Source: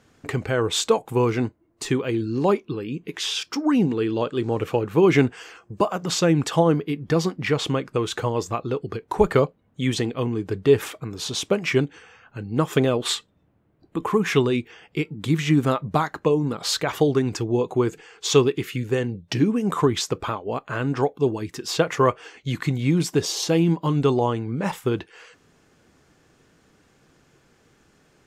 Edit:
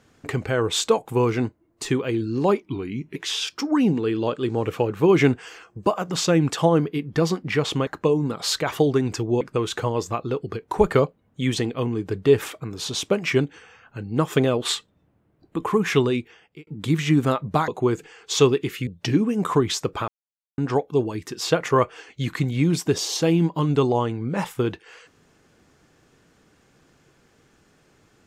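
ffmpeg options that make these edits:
ffmpeg -i in.wav -filter_complex "[0:a]asplit=10[link_01][link_02][link_03][link_04][link_05][link_06][link_07][link_08][link_09][link_10];[link_01]atrim=end=2.624[link_11];[link_02]atrim=start=2.62:end=3.1,asetpts=PTS-STARTPTS,asetrate=39249,aresample=44100,atrim=end_sample=23784,asetpts=PTS-STARTPTS[link_12];[link_03]atrim=start=3.096:end=7.812[link_13];[link_04]atrim=start=16.078:end=17.622[link_14];[link_05]atrim=start=7.808:end=15.07,asetpts=PTS-STARTPTS,afade=type=out:start_time=6.682:duration=0.58[link_15];[link_06]atrim=start=15.07:end=16.082,asetpts=PTS-STARTPTS,afade=type=in:duration=0.004:curve=hsin[link_16];[link_07]atrim=start=17.618:end=18.812[link_17];[link_08]atrim=start=19.138:end=20.35,asetpts=PTS-STARTPTS,afade=type=out:start_time=1.208:duration=0.004:curve=hsin[link_18];[link_09]atrim=start=20.35:end=20.85,asetpts=PTS-STARTPTS,volume=0[link_19];[link_10]atrim=start=20.85,asetpts=PTS-STARTPTS,afade=type=in:duration=0.004:curve=hsin[link_20];[link_11][link_12]acrossfade=duration=0.004:curve1=hsin:curve2=hsin[link_21];[link_21][link_13]acrossfade=duration=0.004:curve1=hsin:curve2=hsin[link_22];[link_22][link_14]acrossfade=duration=0.004:curve1=hsin:curve2=hsin[link_23];[link_15][link_16]concat=n=2:v=0:a=1[link_24];[link_23][link_24]acrossfade=duration=0.004:curve1=hsin:curve2=hsin[link_25];[link_25][link_17]acrossfade=duration=0.004:curve1=hsin:curve2=hsin[link_26];[link_18][link_19][link_20]concat=n=3:v=0:a=1[link_27];[link_26][link_27]acrossfade=duration=0.004:curve1=hsin:curve2=hsin" out.wav

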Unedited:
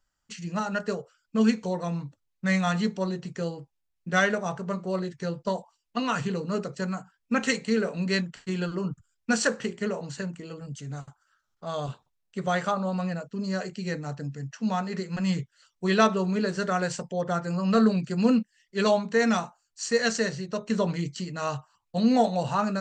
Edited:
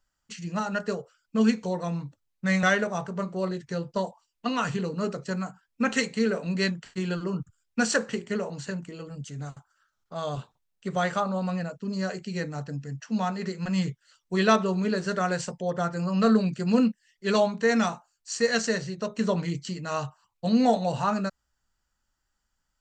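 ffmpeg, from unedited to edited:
ffmpeg -i in.wav -filter_complex "[0:a]asplit=2[link_01][link_02];[link_01]atrim=end=2.632[link_03];[link_02]atrim=start=4.138[link_04];[link_03][link_04]acrossfade=duration=0.004:curve1=hsin:curve2=hsin" out.wav

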